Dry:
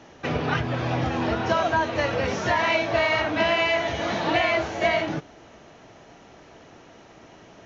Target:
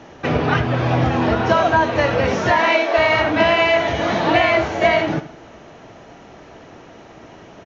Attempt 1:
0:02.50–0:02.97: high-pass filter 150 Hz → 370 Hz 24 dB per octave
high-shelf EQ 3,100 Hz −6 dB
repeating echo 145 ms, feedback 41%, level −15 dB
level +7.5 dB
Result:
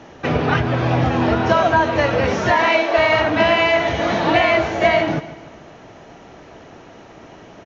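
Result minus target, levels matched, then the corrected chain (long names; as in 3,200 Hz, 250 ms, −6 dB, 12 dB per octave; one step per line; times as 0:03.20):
echo 65 ms late
0:02.50–0:02.97: high-pass filter 150 Hz → 370 Hz 24 dB per octave
high-shelf EQ 3,100 Hz −6 dB
repeating echo 80 ms, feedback 41%, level −15 dB
level +7.5 dB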